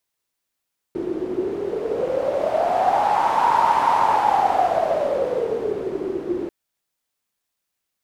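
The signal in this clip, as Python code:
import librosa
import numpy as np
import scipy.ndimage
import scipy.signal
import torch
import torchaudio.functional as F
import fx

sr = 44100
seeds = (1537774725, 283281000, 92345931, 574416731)

y = fx.wind(sr, seeds[0], length_s=5.54, low_hz=350.0, high_hz=930.0, q=11.0, gusts=1, swing_db=9.0)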